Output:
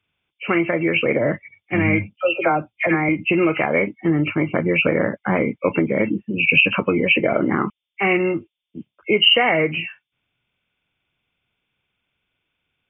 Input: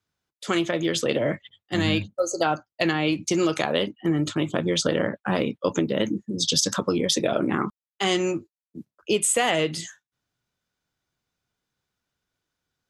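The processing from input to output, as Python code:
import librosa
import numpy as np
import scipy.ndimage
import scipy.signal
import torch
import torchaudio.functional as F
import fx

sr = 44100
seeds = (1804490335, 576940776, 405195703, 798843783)

y = fx.freq_compress(x, sr, knee_hz=2000.0, ratio=4.0)
y = fx.dispersion(y, sr, late='lows', ms=60.0, hz=1100.0, at=(2.16, 3.09))
y = y * librosa.db_to_amplitude(4.5)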